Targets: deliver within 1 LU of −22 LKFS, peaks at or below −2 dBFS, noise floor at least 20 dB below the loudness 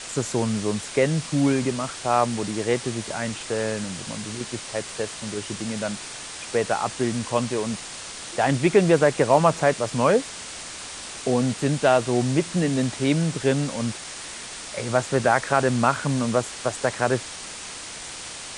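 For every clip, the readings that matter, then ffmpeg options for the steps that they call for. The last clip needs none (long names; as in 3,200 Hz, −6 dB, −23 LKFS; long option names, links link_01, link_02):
background noise floor −37 dBFS; target noise floor −45 dBFS; integrated loudness −24.5 LKFS; sample peak −4.5 dBFS; target loudness −22.0 LKFS
→ -af "afftdn=noise_reduction=8:noise_floor=-37"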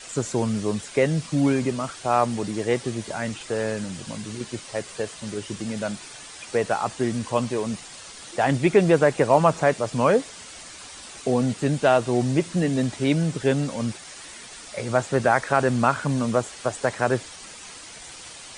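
background noise floor −42 dBFS; target noise floor −44 dBFS
→ -af "afftdn=noise_reduction=6:noise_floor=-42"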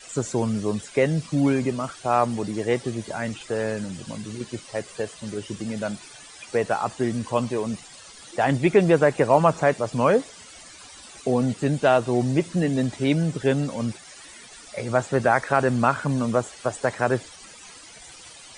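background noise floor −45 dBFS; integrated loudness −24.0 LKFS; sample peak −4.5 dBFS; target loudness −22.0 LKFS
→ -af "volume=2dB"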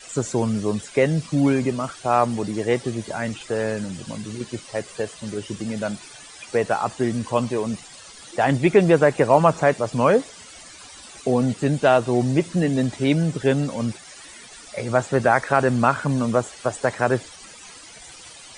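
integrated loudness −22.0 LKFS; sample peak −2.5 dBFS; background noise floor −43 dBFS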